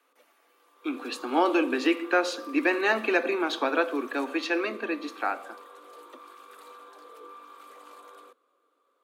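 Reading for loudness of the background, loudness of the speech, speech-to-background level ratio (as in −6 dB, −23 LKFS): −47.0 LKFS, −27.0 LKFS, 20.0 dB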